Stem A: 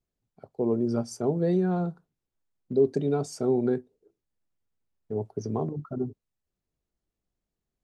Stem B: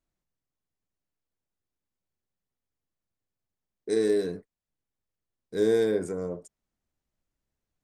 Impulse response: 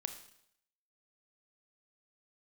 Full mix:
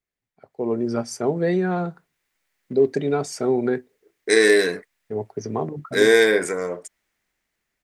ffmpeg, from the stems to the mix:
-filter_complex "[0:a]lowshelf=f=290:g=-8.5,volume=0.794[s0];[1:a]highpass=f=990:p=1,dynaudnorm=f=280:g=11:m=3.76,adelay=400,volume=0.668[s1];[s0][s1]amix=inputs=2:normalize=0,equalizer=f=2000:t=o:w=0.81:g=11,dynaudnorm=f=400:g=3:m=2.82"

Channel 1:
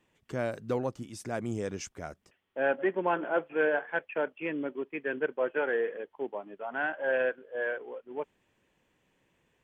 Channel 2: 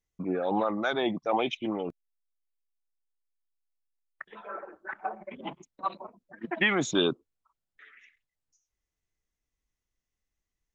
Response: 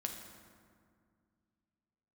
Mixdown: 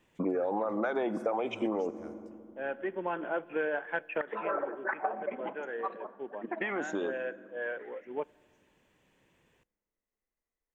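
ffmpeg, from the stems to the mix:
-filter_complex "[0:a]volume=1.26,asplit=2[s0][s1];[s1]volume=0.0891[s2];[1:a]equalizer=f=125:t=o:w=1:g=-11,equalizer=f=250:t=o:w=1:g=6,equalizer=f=500:t=o:w=1:g=11,equalizer=f=1000:t=o:w=1:g=6,equalizer=f=2000:t=o:w=1:g=6,equalizer=f=4000:t=o:w=1:g=-10,acompressor=threshold=0.1:ratio=4,volume=0.944,afade=t=out:st=5.14:d=0.32:silence=0.281838,asplit=3[s3][s4][s5];[s4]volume=0.316[s6];[s5]apad=whole_len=424844[s7];[s0][s7]sidechaincompress=threshold=0.00708:ratio=6:attack=11:release=1220[s8];[2:a]atrim=start_sample=2205[s9];[s2][s6]amix=inputs=2:normalize=0[s10];[s10][s9]afir=irnorm=-1:irlink=0[s11];[s8][s3][s11]amix=inputs=3:normalize=0,acompressor=threshold=0.0398:ratio=6"

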